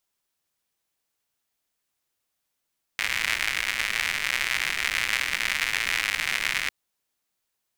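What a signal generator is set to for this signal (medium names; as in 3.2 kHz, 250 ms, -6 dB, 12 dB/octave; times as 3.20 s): rain from filtered ticks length 3.70 s, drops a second 140, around 2.1 kHz, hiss -18 dB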